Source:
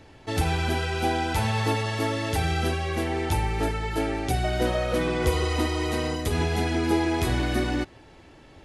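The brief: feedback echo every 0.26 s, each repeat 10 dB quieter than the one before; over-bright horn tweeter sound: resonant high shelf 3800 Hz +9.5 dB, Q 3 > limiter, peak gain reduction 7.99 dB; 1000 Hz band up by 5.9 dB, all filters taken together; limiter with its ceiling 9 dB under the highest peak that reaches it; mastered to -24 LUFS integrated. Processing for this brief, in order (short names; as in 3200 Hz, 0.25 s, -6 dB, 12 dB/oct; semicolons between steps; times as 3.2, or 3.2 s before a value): bell 1000 Hz +8.5 dB; limiter -18 dBFS; resonant high shelf 3800 Hz +9.5 dB, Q 3; feedback echo 0.26 s, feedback 32%, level -10 dB; gain +3 dB; limiter -15 dBFS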